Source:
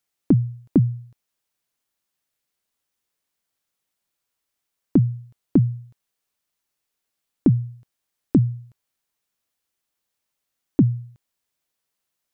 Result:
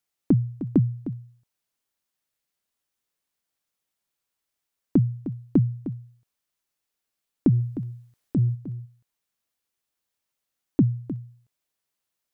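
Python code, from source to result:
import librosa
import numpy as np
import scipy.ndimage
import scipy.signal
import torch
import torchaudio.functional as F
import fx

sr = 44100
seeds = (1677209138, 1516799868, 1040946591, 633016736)

y = fx.transient(x, sr, attack_db=-7, sustain_db=6, at=(7.51, 8.54), fade=0.02)
y = y + 10.0 ** (-12.5 / 20.0) * np.pad(y, (int(307 * sr / 1000.0), 0))[:len(y)]
y = y * 10.0 ** (-3.0 / 20.0)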